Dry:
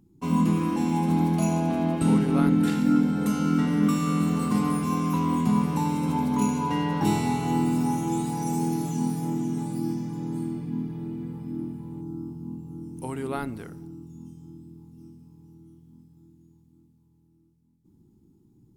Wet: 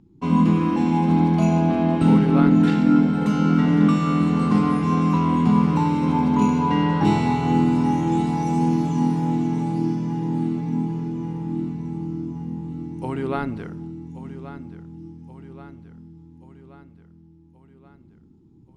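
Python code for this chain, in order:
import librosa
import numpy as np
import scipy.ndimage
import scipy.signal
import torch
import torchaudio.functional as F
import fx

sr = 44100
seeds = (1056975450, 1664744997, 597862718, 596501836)

y = scipy.signal.sosfilt(scipy.signal.butter(2, 4000.0, 'lowpass', fs=sr, output='sos'), x)
y = fx.echo_feedback(y, sr, ms=1129, feedback_pct=56, wet_db=-14.0)
y = y * librosa.db_to_amplitude(5.0)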